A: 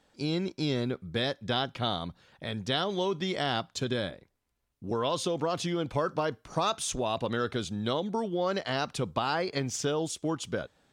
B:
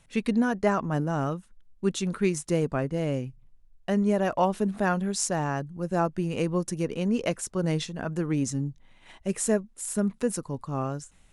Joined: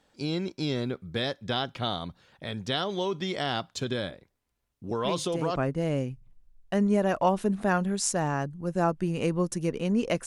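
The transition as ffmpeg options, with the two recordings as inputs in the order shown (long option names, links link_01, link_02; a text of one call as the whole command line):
ffmpeg -i cue0.wav -i cue1.wav -filter_complex "[1:a]asplit=2[link_01][link_02];[0:a]apad=whole_dur=10.26,atrim=end=10.26,atrim=end=5.562[link_03];[link_02]atrim=start=2.718:end=7.42[link_04];[link_01]atrim=start=2.19:end=2.72,asetpts=PTS-STARTPTS,volume=-9dB,afade=type=in:duration=0.004:curve=hsin,afade=type=out:start_time=0.526:duration=0.004:curve=hsin,adelay=5030[link_05];[link_03][link_04]acrossfade=duration=0.004:curve1=hsin:curve2=hsin[link_06];[link_06][link_05]amix=inputs=2:normalize=0" out.wav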